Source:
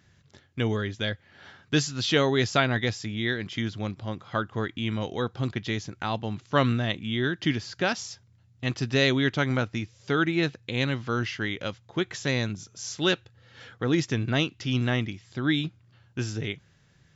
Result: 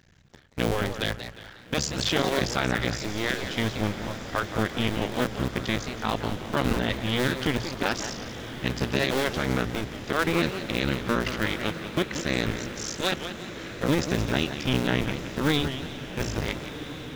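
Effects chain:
sub-harmonics by changed cycles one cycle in 2, muted
mains-hum notches 60/120 Hz
brickwall limiter −17 dBFS, peak gain reduction 9 dB
feedback delay with all-pass diffusion 1,375 ms, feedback 61%, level −12 dB
feedback echo with a swinging delay time 178 ms, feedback 41%, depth 216 cents, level −10 dB
level +4.5 dB

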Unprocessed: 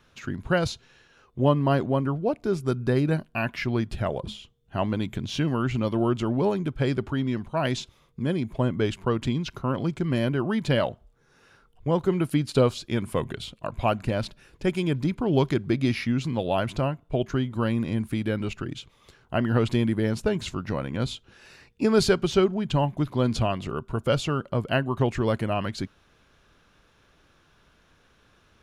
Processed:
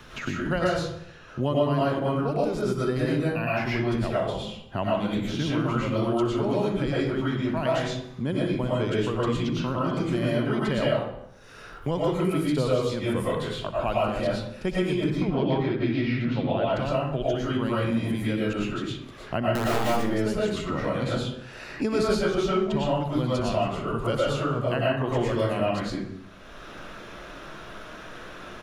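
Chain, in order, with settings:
0:15.10–0:16.74: Bessel low-pass filter 2,900 Hz, order 6
0:19.51–0:19.92: wrap-around overflow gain 14.5 dB
on a send: repeating echo 62 ms, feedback 55%, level −17 dB
on the sum: comb and all-pass reverb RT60 0.59 s, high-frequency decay 0.55×, pre-delay 75 ms, DRR −7.5 dB
multiband upward and downward compressor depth 70%
level −7.5 dB

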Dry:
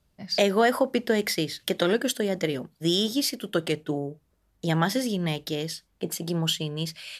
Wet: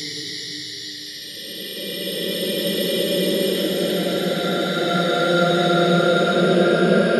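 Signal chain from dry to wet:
spectral magnitudes quantised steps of 30 dB
hum removal 99.81 Hz, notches 4
extreme stretch with random phases 19×, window 0.25 s, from 0:01.53
level +7 dB

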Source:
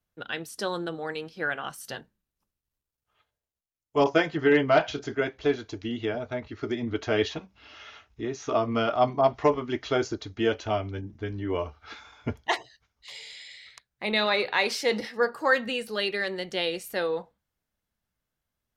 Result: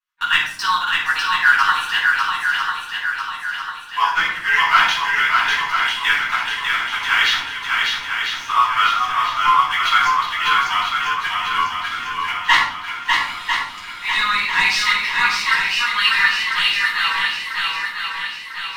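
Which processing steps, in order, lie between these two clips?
elliptic high-pass filter 960 Hz, stop band 40 dB
high-shelf EQ 5,600 Hz −10.5 dB
in parallel at −1 dB: output level in coarse steps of 21 dB
on the sum: leveller curve on the samples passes 2
speech leveller within 5 dB 2 s
rotating-speaker cabinet horn 8 Hz, later 0.8 Hz, at 0:02.12
feedback echo with a long and a short gap by turns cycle 997 ms, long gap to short 1.5 to 1, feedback 50%, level −3.5 dB
rectangular room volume 790 cubic metres, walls furnished, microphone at 9.3 metres
level −2 dB

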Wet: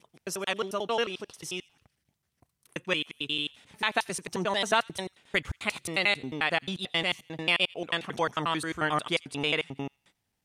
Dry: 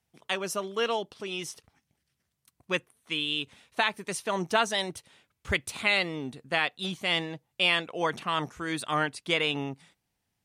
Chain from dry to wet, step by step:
slices reordered back to front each 89 ms, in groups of 3
delay with a high-pass on its return 87 ms, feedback 32%, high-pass 1,900 Hz, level −23.5 dB

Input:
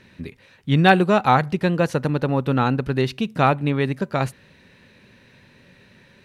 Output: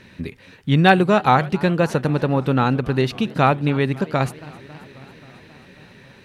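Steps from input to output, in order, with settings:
in parallel at −3 dB: downward compressor, threshold −28 dBFS, peak gain reduction 18 dB
on the sum: feedback echo with a swinging delay time 269 ms, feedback 74%, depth 205 cents, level −21.5 dB

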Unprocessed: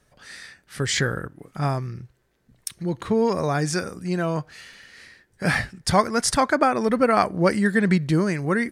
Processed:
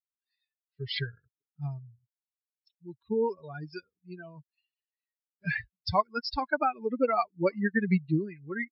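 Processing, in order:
spectral dynamics exaggerated over time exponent 3
high-pass filter 41 Hz
level −2 dB
MP3 56 kbit/s 12,000 Hz

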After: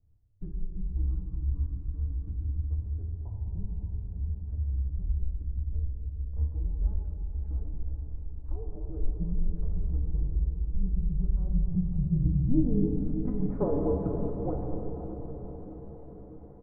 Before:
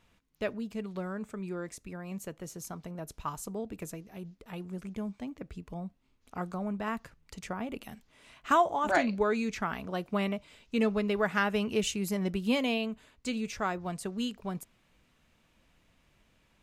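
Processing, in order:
running median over 15 samples
treble cut that deepens with the level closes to 690 Hz, closed at −28 dBFS
comb filter 7.3 ms, depth 50%
in parallel at +3 dB: downward compressor, threshold −40 dBFS, peak gain reduction 17 dB
on the sum: low-pass filter sweep 220 Hz → 770 Hz, 0:11.20–0:13.34
on a send: feedback delay with all-pass diffusion 572 ms, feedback 60%, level −10 dB
on the sum: rectangular room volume 150 cubic metres, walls hard, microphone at 0.4 metres
single-sideband voice off tune −250 Hz 160–3,100 Hz
level −2.5 dB

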